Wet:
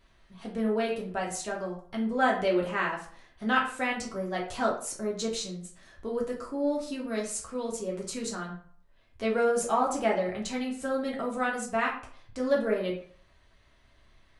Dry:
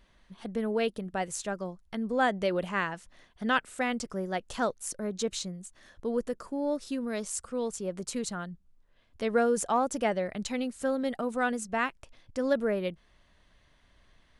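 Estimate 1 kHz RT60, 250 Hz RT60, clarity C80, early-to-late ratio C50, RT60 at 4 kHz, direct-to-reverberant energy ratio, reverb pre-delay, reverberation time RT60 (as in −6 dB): 0.55 s, 0.50 s, 11.5 dB, 7.5 dB, 0.35 s, −3.5 dB, 3 ms, 0.50 s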